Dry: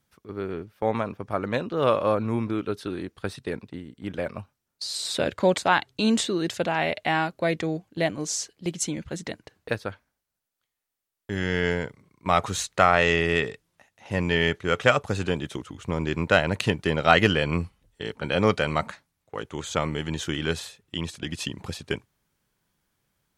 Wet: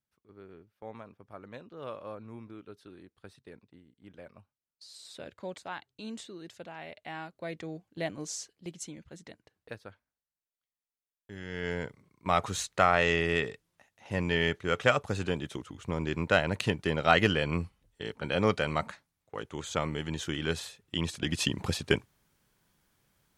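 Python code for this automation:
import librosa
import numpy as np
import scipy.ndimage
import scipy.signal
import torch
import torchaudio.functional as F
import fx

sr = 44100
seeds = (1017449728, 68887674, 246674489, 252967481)

y = fx.gain(x, sr, db=fx.line((6.85, -19.0), (8.19, -8.0), (9.01, -15.0), (11.45, -15.0), (11.85, -5.0), (20.4, -5.0), (21.54, 3.0)))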